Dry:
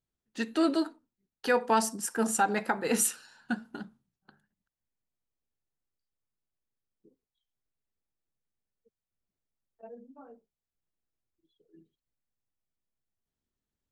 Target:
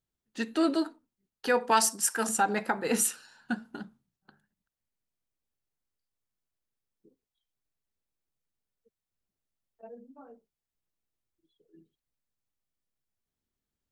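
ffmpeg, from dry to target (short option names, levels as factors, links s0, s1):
-filter_complex "[0:a]asettb=1/sr,asplit=3[s0][s1][s2];[s0]atrim=end=1.714[s3];[s1]atrim=start=1.71:end=2.29,asetpts=PTS-STARTPTS,afade=t=in:d=0.004:c=qsin,afade=t=out:st=0.576:d=0.004:c=qsin,tiltshelf=f=700:g=-7.5[s4];[s2]atrim=start=2.286[s5];[s3][s4]acrossfade=d=0.004:c1=hsin:c2=qsin[s6];[s6][s5]acrossfade=d=0.004:c1=qsin:c2=hsin"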